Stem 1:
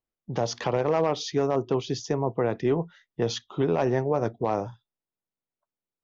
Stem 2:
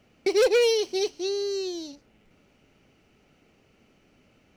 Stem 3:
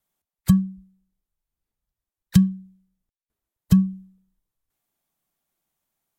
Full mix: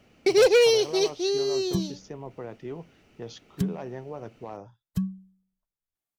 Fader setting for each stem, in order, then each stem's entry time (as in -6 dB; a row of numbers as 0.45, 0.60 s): -13.0, +2.5, -12.0 dB; 0.00, 0.00, 1.25 s